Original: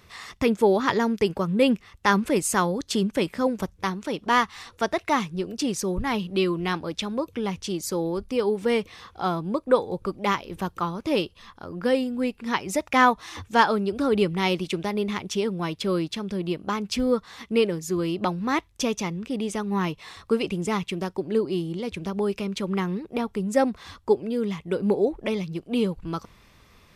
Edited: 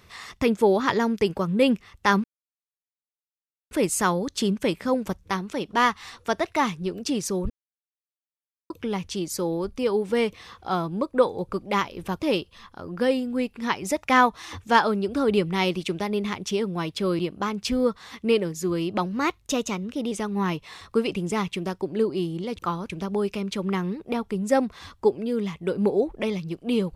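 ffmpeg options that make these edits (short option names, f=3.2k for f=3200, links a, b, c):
-filter_complex "[0:a]asplit=10[a][b][c][d][e][f][g][h][i][j];[a]atrim=end=2.24,asetpts=PTS-STARTPTS,afade=t=out:st=2.236:d=0.004:c=hsin,apad=pad_dur=1.47[k];[b]atrim=start=2.24:end=6.03,asetpts=PTS-STARTPTS,afade=t=in:d=0.004:c=hsin,afade=t=out:st=3.786:d=0.004:c=hsin[l];[c]atrim=start=6.03:end=7.23,asetpts=PTS-STARTPTS,volume=0[m];[d]atrim=start=7.23:end=10.732,asetpts=PTS-STARTPTS,afade=t=in:d=0.004:c=hsin[n];[e]atrim=start=11.038:end=16.032[o];[f]atrim=start=16.458:end=18.334[p];[g]atrim=start=18.33:end=19.47,asetpts=PTS-STARTPTS,asetrate=47628,aresample=44100[q];[h]atrim=start=19.466:end=21.942[r];[i]atrim=start=10.728:end=11.042[s];[j]atrim=start=21.938[t];[k][l][m][n]concat=n=4:v=0:a=1[u];[u][o]acrossfade=d=0.004:c1=hsin:c2=hsin[v];[v][p]acrossfade=d=0.004:c1=hsin:c2=hsin[w];[w][q]acrossfade=d=0.004:c1=hsin:c2=hsin[x];[x][r]acrossfade=d=0.004:c1=hsin:c2=hsin[y];[y][s]acrossfade=d=0.004:c1=hsin:c2=hsin[z];[z][t]acrossfade=d=0.004:c1=hsin:c2=hsin"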